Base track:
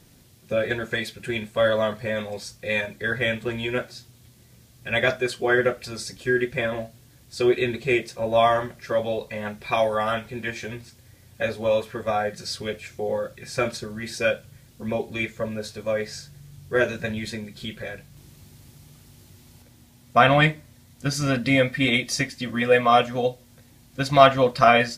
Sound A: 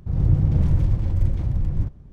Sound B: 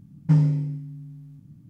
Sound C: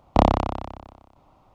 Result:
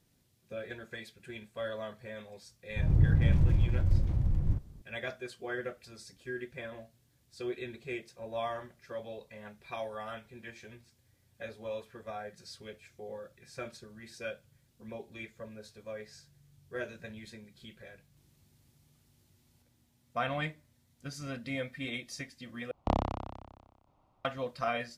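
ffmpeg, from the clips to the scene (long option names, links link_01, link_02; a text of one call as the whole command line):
ffmpeg -i bed.wav -i cue0.wav -i cue1.wav -i cue2.wav -filter_complex "[0:a]volume=-17dB[link_01];[3:a]equalizer=frequency=110:width_type=o:width=1.1:gain=3[link_02];[link_01]asplit=2[link_03][link_04];[link_03]atrim=end=22.714[link_05];[link_02]atrim=end=1.54,asetpts=PTS-STARTPTS,volume=-13dB[link_06];[link_04]atrim=start=24.246[link_07];[1:a]atrim=end=2.12,asetpts=PTS-STARTPTS,volume=-6dB,afade=type=in:duration=0.004:curve=hsin,afade=type=out:start_time=2.116:duration=0.004:curve=hsin,adelay=2700[link_08];[link_05][link_06]acrossfade=duration=0.004:curve1=hsin:curve2=hsin[link_09];[link_09][link_07]acrossfade=duration=0.004:curve1=hsin:curve2=hsin[link_10];[link_10][link_08]amix=inputs=2:normalize=0" out.wav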